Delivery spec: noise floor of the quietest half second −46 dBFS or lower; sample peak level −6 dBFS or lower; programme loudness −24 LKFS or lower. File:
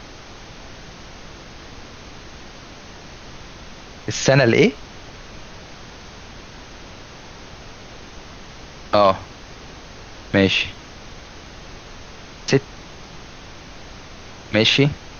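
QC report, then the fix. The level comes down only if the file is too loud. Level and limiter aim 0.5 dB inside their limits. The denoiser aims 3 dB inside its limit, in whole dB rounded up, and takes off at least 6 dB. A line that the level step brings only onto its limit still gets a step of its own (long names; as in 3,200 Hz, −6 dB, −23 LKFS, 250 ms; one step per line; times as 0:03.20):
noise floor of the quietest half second −39 dBFS: out of spec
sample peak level −3.5 dBFS: out of spec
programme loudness −18.0 LKFS: out of spec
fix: broadband denoise 6 dB, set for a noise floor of −39 dBFS
level −6.5 dB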